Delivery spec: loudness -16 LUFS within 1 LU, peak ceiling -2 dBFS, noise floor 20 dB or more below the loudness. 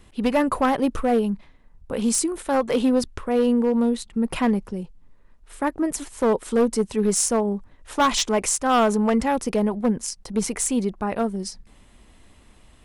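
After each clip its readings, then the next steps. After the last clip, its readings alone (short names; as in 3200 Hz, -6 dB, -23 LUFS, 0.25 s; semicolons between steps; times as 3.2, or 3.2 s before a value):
clipped 1.0%; flat tops at -13.5 dBFS; loudness -22.5 LUFS; peak -13.5 dBFS; loudness target -16.0 LUFS
-> clip repair -13.5 dBFS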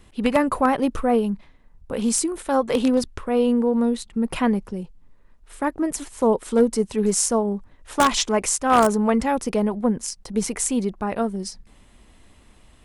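clipped 0.0%; loudness -22.0 LUFS; peak -4.5 dBFS; loudness target -16.0 LUFS
-> gain +6 dB; limiter -2 dBFS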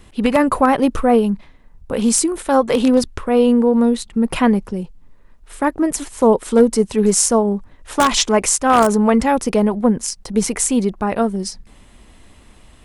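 loudness -16.5 LUFS; peak -2.0 dBFS; noise floor -47 dBFS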